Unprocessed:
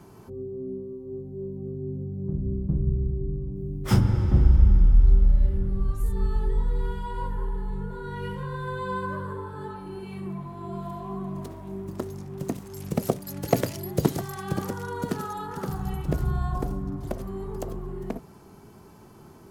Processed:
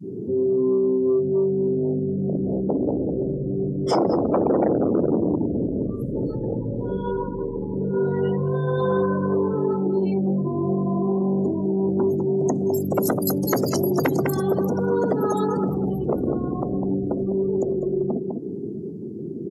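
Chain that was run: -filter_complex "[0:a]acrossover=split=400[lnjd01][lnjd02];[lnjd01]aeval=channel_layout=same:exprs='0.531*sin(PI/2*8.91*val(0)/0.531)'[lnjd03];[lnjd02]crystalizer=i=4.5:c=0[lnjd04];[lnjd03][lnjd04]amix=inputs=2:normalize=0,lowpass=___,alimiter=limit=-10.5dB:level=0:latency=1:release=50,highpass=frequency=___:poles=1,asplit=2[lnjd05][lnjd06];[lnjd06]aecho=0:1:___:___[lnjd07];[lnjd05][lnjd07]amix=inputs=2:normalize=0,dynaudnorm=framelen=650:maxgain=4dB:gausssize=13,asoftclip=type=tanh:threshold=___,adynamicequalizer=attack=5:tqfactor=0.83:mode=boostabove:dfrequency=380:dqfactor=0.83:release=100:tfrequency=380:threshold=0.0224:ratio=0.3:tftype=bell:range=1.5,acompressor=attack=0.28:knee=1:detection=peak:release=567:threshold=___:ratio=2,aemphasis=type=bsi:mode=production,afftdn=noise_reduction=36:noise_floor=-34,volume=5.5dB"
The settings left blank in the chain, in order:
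4800, 230, 202, 0.422, -12.5dB, -23dB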